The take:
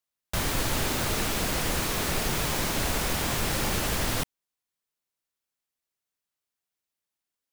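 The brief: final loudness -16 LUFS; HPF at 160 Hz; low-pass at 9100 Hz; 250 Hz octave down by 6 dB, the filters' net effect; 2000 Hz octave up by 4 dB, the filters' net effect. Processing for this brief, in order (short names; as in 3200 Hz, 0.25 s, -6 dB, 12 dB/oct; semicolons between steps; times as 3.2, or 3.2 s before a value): HPF 160 Hz; LPF 9100 Hz; bell 250 Hz -7 dB; bell 2000 Hz +5 dB; gain +12 dB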